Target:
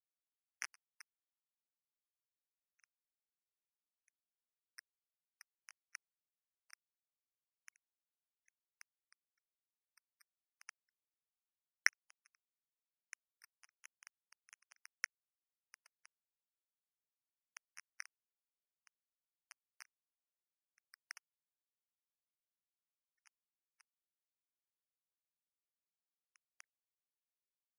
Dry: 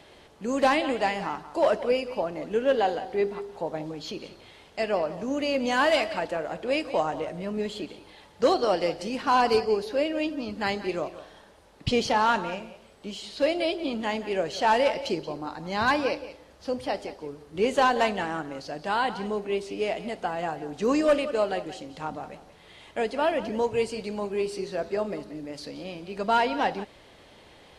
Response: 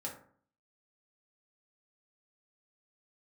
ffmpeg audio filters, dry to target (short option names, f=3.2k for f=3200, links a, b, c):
-af "asuperpass=centerf=3000:order=12:qfactor=3.1,aecho=1:1:1.8:0.82,acompressor=threshold=-41dB:ratio=8,acrusher=bits=4:mix=0:aa=0.5,asetrate=28595,aresample=44100,atempo=1.54221,afftfilt=real='re*gte(hypot(re,im),0.0000708)':imag='im*gte(hypot(re,im),0.0000708)':win_size=1024:overlap=0.75,volume=18dB"